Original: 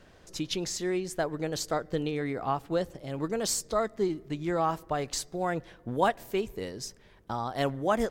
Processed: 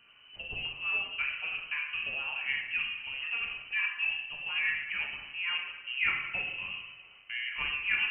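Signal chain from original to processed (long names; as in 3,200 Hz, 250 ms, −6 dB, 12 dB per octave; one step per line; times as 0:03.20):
coupled-rooms reverb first 0.96 s, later 3.1 s, from −18 dB, DRR −1.5 dB
voice inversion scrambler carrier 3,000 Hz
level −7 dB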